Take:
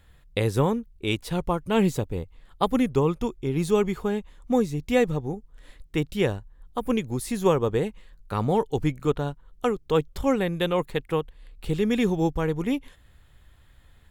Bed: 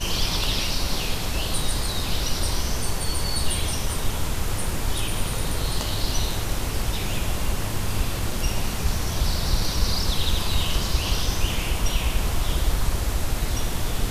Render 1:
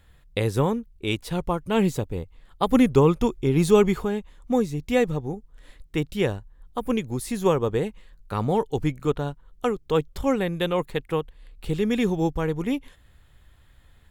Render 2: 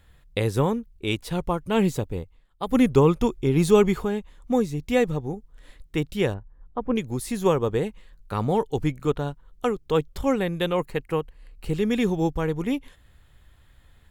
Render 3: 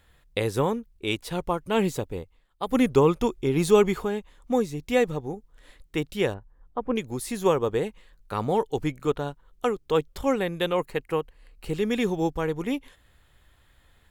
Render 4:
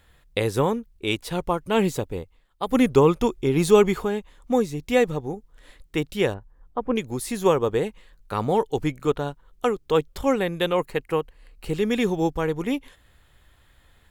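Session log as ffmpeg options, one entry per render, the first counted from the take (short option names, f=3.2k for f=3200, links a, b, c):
-filter_complex "[0:a]asettb=1/sr,asplit=3[a][b][c];[a]atrim=end=2.694[d];[b]atrim=start=2.69:end=4.05,asetpts=PTS-STARTPTS,afade=t=in:d=0.004:c=qsin,afade=t=out:st=1.356:d=0.004:c=qsin,acontrast=32[e];[c]atrim=start=4.046[f];[d][e]acrossfade=d=0.004:c1=hsin:c2=qsin[g];[g][f]acrossfade=d=0.004:c1=qsin:c2=hsin"
-filter_complex "[0:a]asettb=1/sr,asplit=3[a][b][c];[a]atrim=end=6.344[d];[b]atrim=start=6.34:end=6.96,asetpts=PTS-STARTPTS,afade=t=in:d=0.004:c=qsin,afade=t=out:st=0.616:d=0.004:c=qsin,lowpass=1.5k[e];[c]atrim=start=6.956[f];[d][e]acrossfade=d=0.004:c1=hsin:c2=qsin[g];[g][f]acrossfade=d=0.004:c1=qsin:c2=hsin,asettb=1/sr,asplit=3[h][i][j];[h]atrim=end=10.754[k];[i]atrim=start=10.75:end=11.77,asetpts=PTS-STARTPTS,afade=t=in:d=0.004:c=qsin,afade=t=out:st=1.016:d=0.004:c=qsin,bandreject=f=3.5k:w=5.1[l];[j]atrim=start=11.766[m];[k][l]acrossfade=d=0.004:c1=hsin:c2=qsin[n];[n][m]acrossfade=d=0.004:c1=qsin:c2=hsin,asplit=3[o][p][q];[o]atrim=end=2.48,asetpts=PTS-STARTPTS,afade=t=out:st=2.16:d=0.32:silence=0.177828[r];[p]atrim=start=2.48:end=2.53,asetpts=PTS-STARTPTS,volume=-15dB[s];[q]atrim=start=2.53,asetpts=PTS-STARTPTS,afade=t=in:d=0.32:silence=0.177828[t];[r][s][t]concat=n=3:v=0:a=1"
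-af "bass=f=250:g=-6,treble=f=4k:g=0"
-af "volume=2.5dB"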